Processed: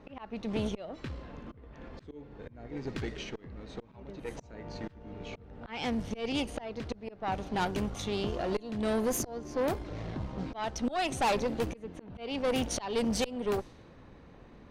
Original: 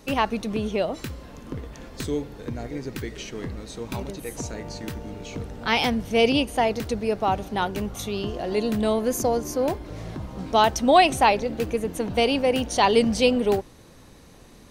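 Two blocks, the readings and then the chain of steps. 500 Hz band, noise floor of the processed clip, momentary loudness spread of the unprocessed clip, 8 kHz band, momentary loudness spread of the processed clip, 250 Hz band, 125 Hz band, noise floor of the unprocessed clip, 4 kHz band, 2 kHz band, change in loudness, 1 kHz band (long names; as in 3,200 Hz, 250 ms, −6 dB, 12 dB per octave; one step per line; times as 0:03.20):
−11.0 dB, −54 dBFS, 16 LU, −6.5 dB, 18 LU, −8.5 dB, −7.0 dB, −49 dBFS, −11.5 dB, −11.5 dB, −10.5 dB, −13.0 dB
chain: volume swells 422 ms
tube saturation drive 24 dB, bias 0.6
low-pass that shuts in the quiet parts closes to 1,900 Hz, open at −26 dBFS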